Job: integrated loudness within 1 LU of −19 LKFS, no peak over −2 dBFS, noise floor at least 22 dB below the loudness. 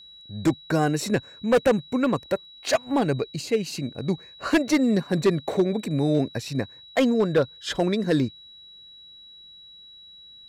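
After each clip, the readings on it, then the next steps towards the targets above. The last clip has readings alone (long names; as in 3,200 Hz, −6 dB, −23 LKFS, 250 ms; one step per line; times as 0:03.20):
share of clipped samples 0.8%; peaks flattened at −13.5 dBFS; interfering tone 3,900 Hz; level of the tone −45 dBFS; integrated loudness −24.5 LKFS; sample peak −13.5 dBFS; target loudness −19.0 LKFS
→ clipped peaks rebuilt −13.5 dBFS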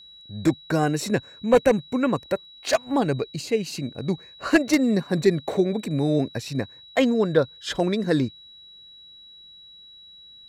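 share of clipped samples 0.0%; interfering tone 3,900 Hz; level of the tone −45 dBFS
→ notch filter 3,900 Hz, Q 30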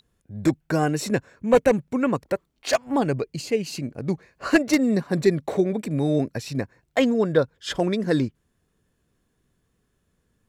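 interfering tone none found; integrated loudness −24.0 LKFS; sample peak −5.5 dBFS; target loudness −19.0 LKFS
→ level +5 dB
brickwall limiter −2 dBFS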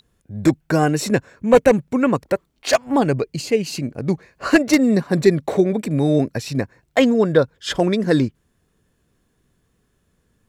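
integrated loudness −19.0 LKFS; sample peak −2.0 dBFS; background noise floor −67 dBFS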